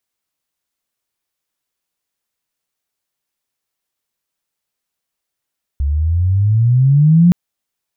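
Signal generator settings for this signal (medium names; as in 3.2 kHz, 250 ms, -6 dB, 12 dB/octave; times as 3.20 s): sweep logarithmic 68 Hz -> 180 Hz -13.5 dBFS -> -5 dBFS 1.52 s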